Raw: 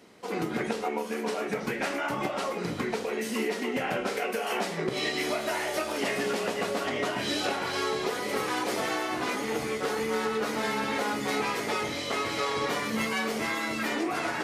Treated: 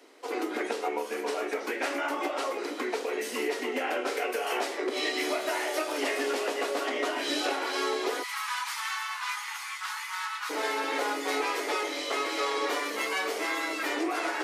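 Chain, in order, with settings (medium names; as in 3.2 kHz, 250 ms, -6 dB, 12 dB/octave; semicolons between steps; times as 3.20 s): steep high-pass 260 Hz 72 dB/octave, from 8.22 s 900 Hz, from 10.49 s 280 Hz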